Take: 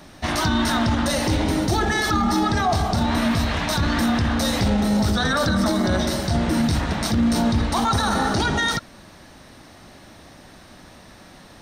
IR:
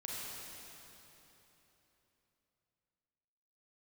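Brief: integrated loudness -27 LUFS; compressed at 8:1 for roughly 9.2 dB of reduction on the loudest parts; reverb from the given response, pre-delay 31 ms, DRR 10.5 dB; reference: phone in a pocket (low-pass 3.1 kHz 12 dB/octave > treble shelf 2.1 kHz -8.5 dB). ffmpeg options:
-filter_complex "[0:a]acompressor=threshold=0.0501:ratio=8,asplit=2[s0][s1];[1:a]atrim=start_sample=2205,adelay=31[s2];[s1][s2]afir=irnorm=-1:irlink=0,volume=0.282[s3];[s0][s3]amix=inputs=2:normalize=0,lowpass=3100,highshelf=f=2100:g=-8.5,volume=1.5"

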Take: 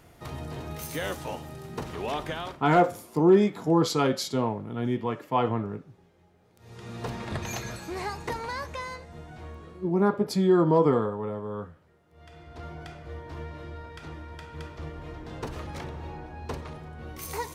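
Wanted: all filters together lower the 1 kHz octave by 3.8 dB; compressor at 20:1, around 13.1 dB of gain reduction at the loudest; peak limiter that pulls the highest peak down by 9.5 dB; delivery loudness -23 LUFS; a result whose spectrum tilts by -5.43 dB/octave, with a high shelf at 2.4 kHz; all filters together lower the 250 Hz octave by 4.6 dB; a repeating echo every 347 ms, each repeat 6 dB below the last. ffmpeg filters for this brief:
-af "equalizer=f=250:t=o:g=-7,equalizer=f=1000:t=o:g=-4,highshelf=f=2400:g=-4,acompressor=threshold=0.0316:ratio=20,alimiter=level_in=1.78:limit=0.0631:level=0:latency=1,volume=0.562,aecho=1:1:347|694|1041|1388|1735|2082:0.501|0.251|0.125|0.0626|0.0313|0.0157,volume=6.68"

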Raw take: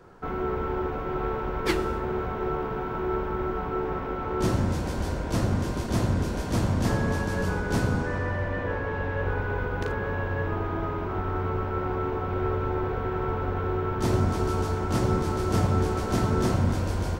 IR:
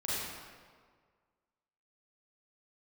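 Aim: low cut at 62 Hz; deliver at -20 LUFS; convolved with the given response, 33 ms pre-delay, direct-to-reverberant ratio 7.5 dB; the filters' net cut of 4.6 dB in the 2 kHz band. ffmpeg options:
-filter_complex "[0:a]highpass=62,equalizer=f=2000:t=o:g=-6.5,asplit=2[s0][s1];[1:a]atrim=start_sample=2205,adelay=33[s2];[s1][s2]afir=irnorm=-1:irlink=0,volume=0.224[s3];[s0][s3]amix=inputs=2:normalize=0,volume=2.51"

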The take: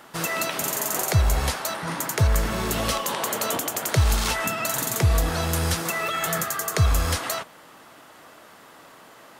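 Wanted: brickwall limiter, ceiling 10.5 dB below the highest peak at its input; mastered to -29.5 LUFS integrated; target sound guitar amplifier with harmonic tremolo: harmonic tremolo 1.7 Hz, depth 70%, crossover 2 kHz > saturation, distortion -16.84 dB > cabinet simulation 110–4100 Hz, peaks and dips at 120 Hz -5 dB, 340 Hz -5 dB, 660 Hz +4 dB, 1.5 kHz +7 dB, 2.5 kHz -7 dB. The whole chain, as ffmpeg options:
-filter_complex "[0:a]alimiter=limit=0.106:level=0:latency=1,acrossover=split=2000[s0][s1];[s0]aeval=exprs='val(0)*(1-0.7/2+0.7/2*cos(2*PI*1.7*n/s))':c=same[s2];[s1]aeval=exprs='val(0)*(1-0.7/2-0.7/2*cos(2*PI*1.7*n/s))':c=same[s3];[s2][s3]amix=inputs=2:normalize=0,asoftclip=threshold=0.0562,highpass=110,equalizer=f=120:t=q:w=4:g=-5,equalizer=f=340:t=q:w=4:g=-5,equalizer=f=660:t=q:w=4:g=4,equalizer=f=1500:t=q:w=4:g=7,equalizer=f=2500:t=q:w=4:g=-7,lowpass=f=4100:w=0.5412,lowpass=f=4100:w=1.3066,volume=1.78"

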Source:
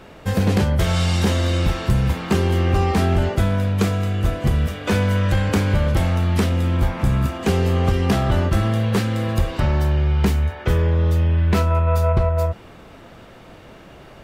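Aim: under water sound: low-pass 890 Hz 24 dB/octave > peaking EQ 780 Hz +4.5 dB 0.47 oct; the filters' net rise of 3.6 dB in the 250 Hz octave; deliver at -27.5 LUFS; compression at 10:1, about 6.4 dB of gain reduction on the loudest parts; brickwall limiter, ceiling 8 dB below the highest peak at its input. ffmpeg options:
-af "equalizer=f=250:t=o:g=5,acompressor=threshold=0.126:ratio=10,alimiter=limit=0.15:level=0:latency=1,lowpass=f=890:w=0.5412,lowpass=f=890:w=1.3066,equalizer=f=780:t=o:w=0.47:g=4.5,volume=0.794"

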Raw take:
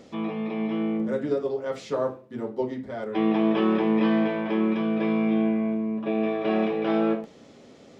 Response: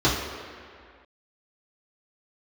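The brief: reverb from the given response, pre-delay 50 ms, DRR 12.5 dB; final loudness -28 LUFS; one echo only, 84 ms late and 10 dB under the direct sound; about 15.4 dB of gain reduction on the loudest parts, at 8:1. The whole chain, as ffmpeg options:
-filter_complex "[0:a]acompressor=threshold=0.0178:ratio=8,aecho=1:1:84:0.316,asplit=2[s0][s1];[1:a]atrim=start_sample=2205,adelay=50[s2];[s1][s2]afir=irnorm=-1:irlink=0,volume=0.0299[s3];[s0][s3]amix=inputs=2:normalize=0,volume=3.35"

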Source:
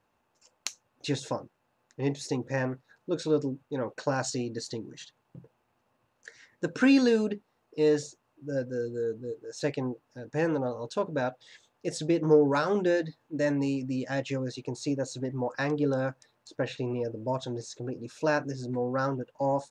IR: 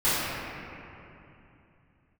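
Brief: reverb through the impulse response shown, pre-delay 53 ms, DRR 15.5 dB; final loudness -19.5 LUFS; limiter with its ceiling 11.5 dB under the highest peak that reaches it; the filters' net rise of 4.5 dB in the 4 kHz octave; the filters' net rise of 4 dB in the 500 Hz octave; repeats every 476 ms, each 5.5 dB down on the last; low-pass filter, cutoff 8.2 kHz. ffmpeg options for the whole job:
-filter_complex "[0:a]lowpass=8200,equalizer=f=500:t=o:g=4.5,equalizer=f=4000:t=o:g=5.5,alimiter=limit=0.119:level=0:latency=1,aecho=1:1:476|952|1428|1904|2380|2856|3332:0.531|0.281|0.149|0.079|0.0419|0.0222|0.0118,asplit=2[s0][s1];[1:a]atrim=start_sample=2205,adelay=53[s2];[s1][s2]afir=irnorm=-1:irlink=0,volume=0.0251[s3];[s0][s3]amix=inputs=2:normalize=0,volume=2.99"

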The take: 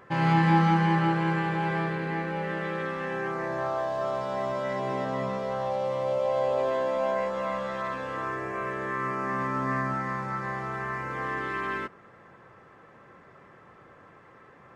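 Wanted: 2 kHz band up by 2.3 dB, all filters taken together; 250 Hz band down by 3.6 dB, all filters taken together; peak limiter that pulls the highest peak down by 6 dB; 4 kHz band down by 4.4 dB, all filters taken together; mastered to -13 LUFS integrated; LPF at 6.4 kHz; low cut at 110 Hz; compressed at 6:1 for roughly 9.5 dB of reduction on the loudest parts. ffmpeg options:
-af "highpass=110,lowpass=6400,equalizer=f=250:t=o:g=-6,equalizer=f=2000:t=o:g=4.5,equalizer=f=4000:t=o:g=-8.5,acompressor=threshold=0.0355:ratio=6,volume=12.6,alimiter=limit=0.562:level=0:latency=1"

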